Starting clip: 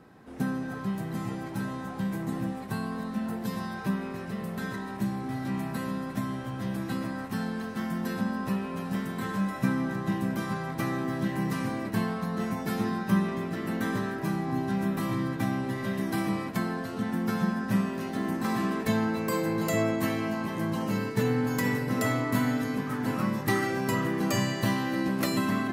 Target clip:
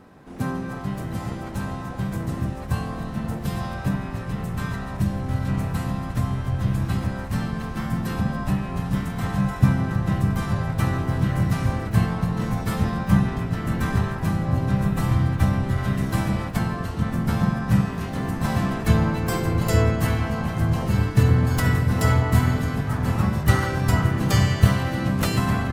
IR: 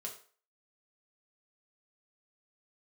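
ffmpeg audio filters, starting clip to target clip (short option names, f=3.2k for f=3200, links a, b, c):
-filter_complex "[0:a]asubboost=boost=11.5:cutoff=84,asplit=4[a][b][c][d];[b]asetrate=29433,aresample=44100,atempo=1.49831,volume=-3dB[e];[c]asetrate=33038,aresample=44100,atempo=1.33484,volume=-6dB[f];[d]asetrate=66075,aresample=44100,atempo=0.66742,volume=-16dB[g];[a][e][f][g]amix=inputs=4:normalize=0,volume=2.5dB"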